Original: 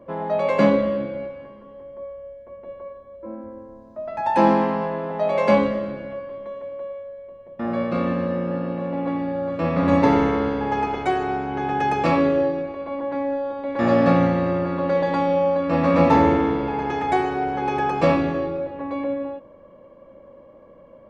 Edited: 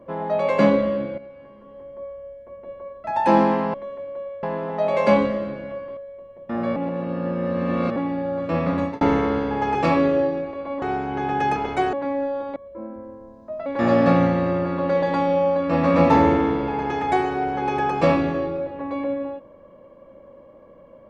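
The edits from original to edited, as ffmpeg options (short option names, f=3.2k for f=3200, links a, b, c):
-filter_complex "[0:a]asplit=15[a][b][c][d][e][f][g][h][i][j][k][l][m][n][o];[a]atrim=end=1.18,asetpts=PTS-STARTPTS,afade=t=out:st=1.176:d=0.004:c=hsin:silence=0.251189[p];[b]atrim=start=1.18:end=3.042,asetpts=PTS-STARTPTS,afade=t=in:d=0.62:silence=0.251189[q];[c]atrim=start=4.138:end=4.842[r];[d]atrim=start=6.378:end=7.072[s];[e]atrim=start=4.838:end=6.382[t];[f]atrim=start=7.068:end=7.862[u];[g]atrim=start=7.858:end=9.062,asetpts=PTS-STARTPTS,areverse[v];[h]atrim=start=9.058:end=10.11,asetpts=PTS-STARTPTS,afade=t=out:st=0.662:d=0.39[w];[i]atrim=start=10.11:end=10.852,asetpts=PTS-STARTPTS,afade=t=in:d=0.004:c=hsin[x];[j]atrim=start=11.958:end=13.032[y];[k]atrim=start=11.218:end=11.962[z];[l]atrim=start=10.848:end=11.222[aa];[m]atrim=start=13.028:end=13.662[ab];[n]atrim=start=3.038:end=4.142[ac];[o]atrim=start=13.658[ad];[p][q]concat=n=2:v=0:a=1[ae];[ae][r]acrossfade=d=0.004:c1=hsin:c2=hsin[af];[af][s]acrossfade=d=0.004:c1=hsin:c2=hsin[ag];[ag][t]acrossfade=d=0.004:c1=hsin:c2=hsin[ah];[ah][u]acrossfade=d=0.004:c1=hsin:c2=hsin[ai];[ai][v]acrossfade=d=0.004:c1=hsin:c2=hsin[aj];[w][x]concat=n=2:v=0:a=1[ak];[aj][ak]acrossfade=d=0.004:c1=hsin:c2=hsin[al];[al][y]acrossfade=d=0.004:c1=hsin:c2=hsin[am];[am][z]acrossfade=d=0.004:c1=hsin:c2=hsin[an];[an][aa]acrossfade=d=0.004:c1=hsin:c2=hsin[ao];[ao][ab]acrossfade=d=0.004:c1=hsin:c2=hsin[ap];[ap][ac]acrossfade=d=0.004:c1=hsin:c2=hsin[aq];[aq][ad]acrossfade=d=0.004:c1=hsin:c2=hsin"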